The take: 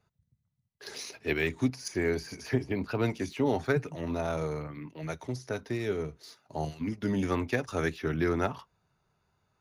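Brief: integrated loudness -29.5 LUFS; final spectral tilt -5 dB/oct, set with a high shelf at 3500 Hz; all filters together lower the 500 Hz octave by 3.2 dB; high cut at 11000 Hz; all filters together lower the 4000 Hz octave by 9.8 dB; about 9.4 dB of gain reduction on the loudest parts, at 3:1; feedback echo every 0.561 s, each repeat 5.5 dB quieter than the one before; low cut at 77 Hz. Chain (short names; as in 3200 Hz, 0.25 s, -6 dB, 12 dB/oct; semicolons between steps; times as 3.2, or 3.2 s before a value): HPF 77 Hz; LPF 11000 Hz; bell 500 Hz -4 dB; high shelf 3500 Hz -6 dB; bell 4000 Hz -8.5 dB; compressor 3:1, threshold -36 dBFS; feedback echo 0.561 s, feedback 53%, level -5.5 dB; gain +10 dB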